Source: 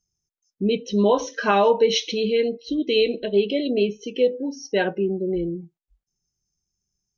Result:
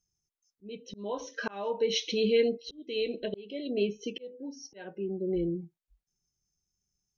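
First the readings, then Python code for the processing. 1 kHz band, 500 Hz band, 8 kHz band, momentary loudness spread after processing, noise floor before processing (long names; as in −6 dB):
−18.0 dB, −10.0 dB, can't be measured, 17 LU, below −85 dBFS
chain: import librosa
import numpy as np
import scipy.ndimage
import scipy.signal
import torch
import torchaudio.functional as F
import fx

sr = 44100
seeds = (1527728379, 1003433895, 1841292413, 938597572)

y = fx.auto_swell(x, sr, attack_ms=764.0)
y = y * 10.0 ** (-3.5 / 20.0)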